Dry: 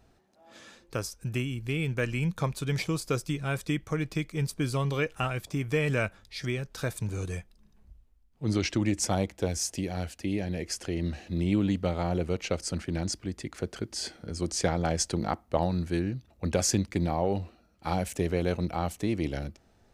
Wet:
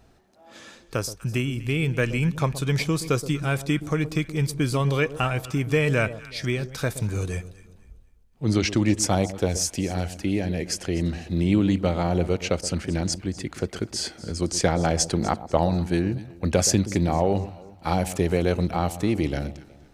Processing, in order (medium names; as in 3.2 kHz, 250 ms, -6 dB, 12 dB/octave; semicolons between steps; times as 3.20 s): echo whose repeats swap between lows and highs 123 ms, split 930 Hz, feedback 55%, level -13 dB; trim +5.5 dB